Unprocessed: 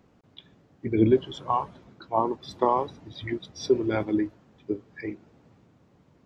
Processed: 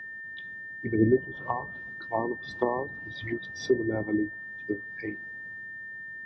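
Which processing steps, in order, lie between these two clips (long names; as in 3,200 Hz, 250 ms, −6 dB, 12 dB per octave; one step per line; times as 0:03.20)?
treble cut that deepens with the level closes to 650 Hz, closed at −22 dBFS
steady tone 1,800 Hz −36 dBFS
level −2 dB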